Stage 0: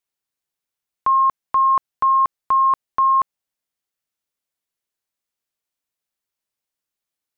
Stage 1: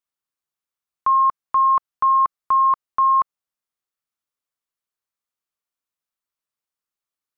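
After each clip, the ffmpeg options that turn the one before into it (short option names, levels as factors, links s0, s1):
-af "equalizer=f=1200:t=o:w=0.56:g=7,volume=0.531"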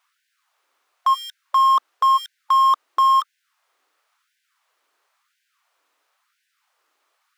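-filter_complex "[0:a]asplit=2[s0][s1];[s1]highpass=f=720:p=1,volume=50.1,asoftclip=type=tanh:threshold=0.251[s2];[s0][s2]amix=inputs=2:normalize=0,lowpass=f=1200:p=1,volume=0.501,afftfilt=real='re*gte(b*sr/1024,230*pow(1500/230,0.5+0.5*sin(2*PI*0.97*pts/sr)))':imag='im*gte(b*sr/1024,230*pow(1500/230,0.5+0.5*sin(2*PI*0.97*pts/sr)))':win_size=1024:overlap=0.75,volume=1.33"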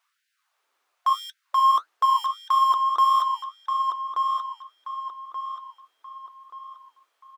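-filter_complex "[0:a]flanger=delay=4.4:depth=6.9:regen=60:speed=1.5:shape=sinusoidal,asplit=2[s0][s1];[s1]adelay=1180,lowpass=f=4000:p=1,volume=0.562,asplit=2[s2][s3];[s3]adelay=1180,lowpass=f=4000:p=1,volume=0.4,asplit=2[s4][s5];[s5]adelay=1180,lowpass=f=4000:p=1,volume=0.4,asplit=2[s6][s7];[s7]adelay=1180,lowpass=f=4000:p=1,volume=0.4,asplit=2[s8][s9];[s9]adelay=1180,lowpass=f=4000:p=1,volume=0.4[s10];[s0][s2][s4][s6][s8][s10]amix=inputs=6:normalize=0"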